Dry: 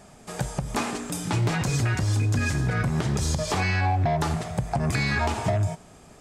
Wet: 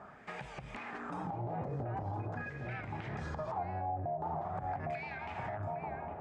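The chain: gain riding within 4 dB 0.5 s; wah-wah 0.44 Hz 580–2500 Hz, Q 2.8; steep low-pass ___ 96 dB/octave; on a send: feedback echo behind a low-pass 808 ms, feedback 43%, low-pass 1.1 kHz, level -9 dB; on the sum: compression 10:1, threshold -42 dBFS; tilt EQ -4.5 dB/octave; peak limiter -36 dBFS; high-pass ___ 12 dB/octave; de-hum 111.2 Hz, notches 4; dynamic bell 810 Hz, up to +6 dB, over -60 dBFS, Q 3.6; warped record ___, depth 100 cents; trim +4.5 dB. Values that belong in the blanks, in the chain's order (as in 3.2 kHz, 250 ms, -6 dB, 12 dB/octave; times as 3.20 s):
11 kHz, 41 Hz, 78 rpm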